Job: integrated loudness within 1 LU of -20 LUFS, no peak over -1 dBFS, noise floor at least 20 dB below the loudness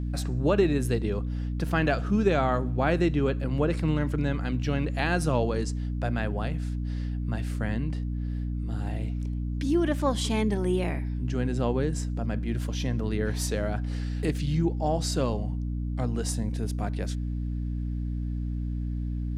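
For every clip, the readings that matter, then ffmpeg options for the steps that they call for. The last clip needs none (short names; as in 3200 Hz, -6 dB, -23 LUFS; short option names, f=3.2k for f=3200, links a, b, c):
hum 60 Hz; harmonics up to 300 Hz; hum level -28 dBFS; loudness -28.5 LUFS; peak -10.0 dBFS; loudness target -20.0 LUFS
-> -af "bandreject=f=60:t=h:w=6,bandreject=f=120:t=h:w=6,bandreject=f=180:t=h:w=6,bandreject=f=240:t=h:w=6,bandreject=f=300:t=h:w=6"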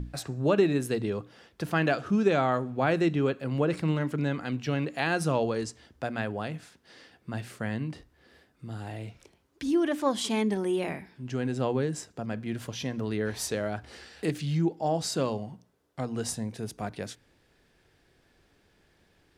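hum none; loudness -30.0 LUFS; peak -11.5 dBFS; loudness target -20.0 LUFS
-> -af "volume=10dB"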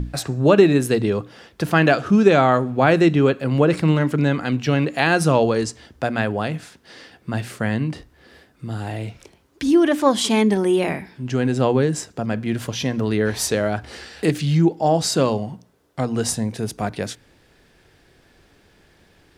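loudness -20.0 LUFS; peak -1.5 dBFS; noise floor -57 dBFS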